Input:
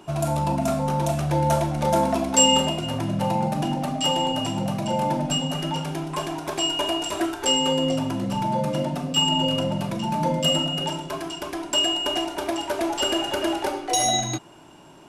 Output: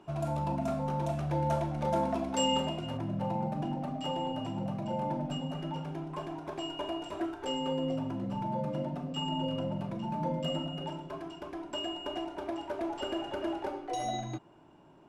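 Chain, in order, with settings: low-pass 2.2 kHz 6 dB/octave, from 2.97 s 1.1 kHz; trim -8.5 dB

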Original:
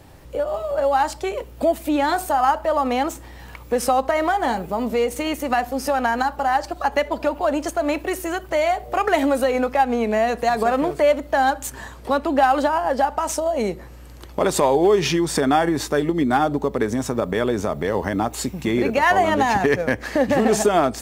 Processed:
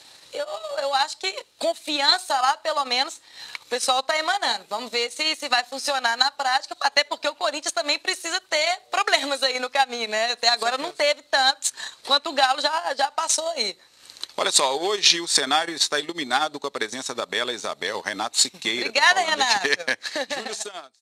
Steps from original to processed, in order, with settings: fade out at the end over 1.25 s; high-pass 85 Hz 12 dB/octave; peaking EQ 4 kHz +12 dB 0.27 oct; transient shaper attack +3 dB, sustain -10 dB; frequency weighting ITU-R 468; trim -3 dB

